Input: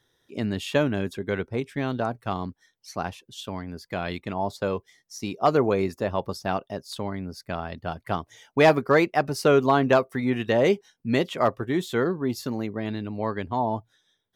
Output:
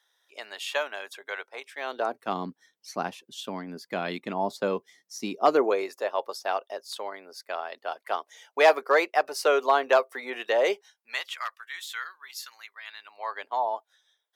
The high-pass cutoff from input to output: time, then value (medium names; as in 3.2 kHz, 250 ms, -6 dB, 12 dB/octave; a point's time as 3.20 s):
high-pass 24 dB/octave
1.73 s 670 Hz
2.38 s 190 Hz
5.24 s 190 Hz
5.89 s 470 Hz
10.72 s 470 Hz
11.41 s 1.4 kHz
12.79 s 1.4 kHz
13.47 s 570 Hz